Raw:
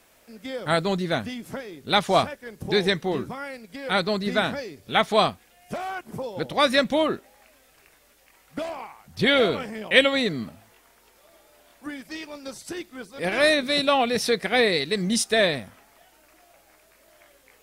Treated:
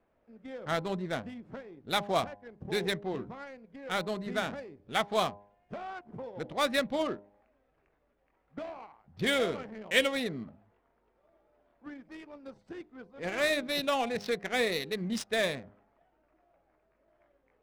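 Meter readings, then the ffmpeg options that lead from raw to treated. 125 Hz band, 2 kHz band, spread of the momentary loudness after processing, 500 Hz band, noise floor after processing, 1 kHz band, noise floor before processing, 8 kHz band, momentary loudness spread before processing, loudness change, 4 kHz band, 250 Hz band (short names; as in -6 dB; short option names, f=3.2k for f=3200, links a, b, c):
-9.0 dB, -8.5 dB, 18 LU, -9.0 dB, -73 dBFS, -9.0 dB, -59 dBFS, -9.0 dB, 17 LU, -8.5 dB, -10.0 dB, -9.0 dB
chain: -af "adynamicsmooth=sensitivity=3:basefreq=1.1k,bandreject=f=101.7:t=h:w=4,bandreject=f=203.4:t=h:w=4,bandreject=f=305.1:t=h:w=4,bandreject=f=406.8:t=h:w=4,bandreject=f=508.5:t=h:w=4,bandreject=f=610.2:t=h:w=4,bandreject=f=711.9:t=h:w=4,bandreject=f=813.6:t=h:w=4,bandreject=f=915.3:t=h:w=4,bandreject=f=1.017k:t=h:w=4,volume=-8.5dB"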